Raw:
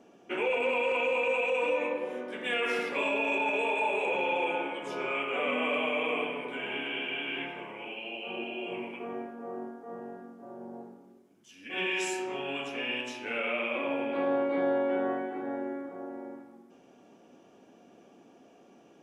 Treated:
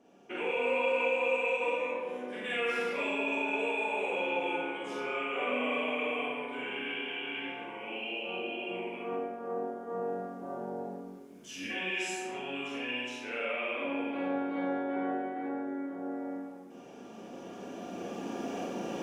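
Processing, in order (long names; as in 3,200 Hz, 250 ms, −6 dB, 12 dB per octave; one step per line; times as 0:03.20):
camcorder AGC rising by 7.8 dB per second
four-comb reverb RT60 0.5 s, combs from 32 ms, DRR −2.5 dB
level −7 dB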